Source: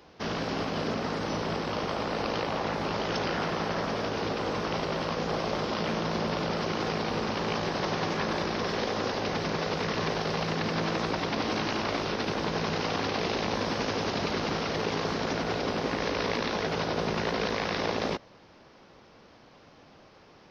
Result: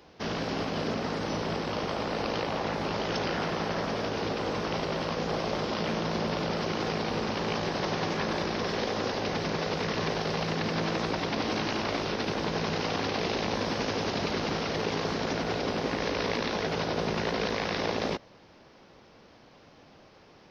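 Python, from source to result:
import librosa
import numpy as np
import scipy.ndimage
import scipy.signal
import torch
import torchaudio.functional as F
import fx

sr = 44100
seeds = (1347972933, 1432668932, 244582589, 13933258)

y = fx.peak_eq(x, sr, hz=1200.0, db=-2.0, octaves=0.77)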